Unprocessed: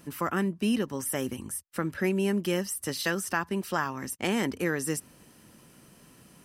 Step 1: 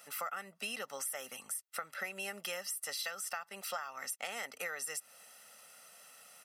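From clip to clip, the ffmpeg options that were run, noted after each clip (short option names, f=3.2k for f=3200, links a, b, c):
-af "highpass=780,aecho=1:1:1.5:0.8,acompressor=threshold=-36dB:ratio=12"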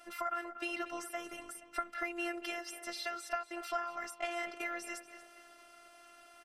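-filter_complex "[0:a]aemphasis=mode=reproduction:type=riaa,asplit=2[a][b];[b]adelay=237,lowpass=f=4.9k:p=1,volume=-12dB,asplit=2[c][d];[d]adelay=237,lowpass=f=4.9k:p=1,volume=0.48,asplit=2[e][f];[f]adelay=237,lowpass=f=4.9k:p=1,volume=0.48,asplit=2[g][h];[h]adelay=237,lowpass=f=4.9k:p=1,volume=0.48,asplit=2[i][j];[j]adelay=237,lowpass=f=4.9k:p=1,volume=0.48[k];[a][c][e][g][i][k]amix=inputs=6:normalize=0,afftfilt=real='hypot(re,im)*cos(PI*b)':imag='0':win_size=512:overlap=0.75,volume=7.5dB"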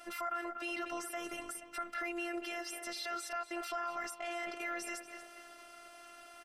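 -af "alimiter=level_in=7.5dB:limit=-24dB:level=0:latency=1:release=34,volume=-7.5dB,volume=4dB"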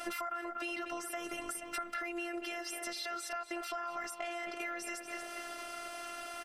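-af "acompressor=threshold=-46dB:ratio=12,volume=11dB"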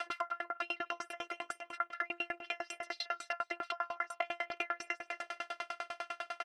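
-af "highpass=600,lowpass=3.9k,aecho=1:1:190:0.119,aeval=exprs='val(0)*pow(10,-37*if(lt(mod(10*n/s,1),2*abs(10)/1000),1-mod(10*n/s,1)/(2*abs(10)/1000),(mod(10*n/s,1)-2*abs(10)/1000)/(1-2*abs(10)/1000))/20)':c=same,volume=11dB"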